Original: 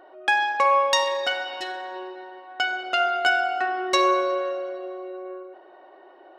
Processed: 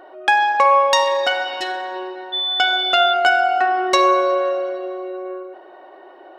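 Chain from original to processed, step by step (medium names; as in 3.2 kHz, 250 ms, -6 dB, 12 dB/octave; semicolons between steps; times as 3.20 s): dynamic bell 780 Hz, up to +5 dB, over -32 dBFS, Q 1.1; in parallel at +1.5 dB: compression, threshold -25 dBFS, peak gain reduction 12 dB; 2.32–3.12 s: on the sum: whistle 3.5 kHz -19 dBFS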